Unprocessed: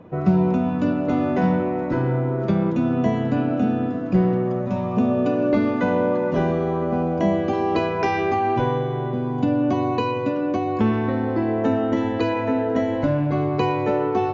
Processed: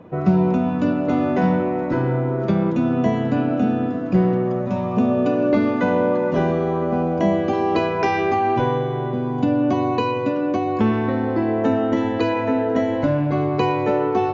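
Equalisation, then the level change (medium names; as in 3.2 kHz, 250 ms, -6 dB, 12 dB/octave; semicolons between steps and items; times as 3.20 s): bass shelf 92 Hz -5 dB; +2.0 dB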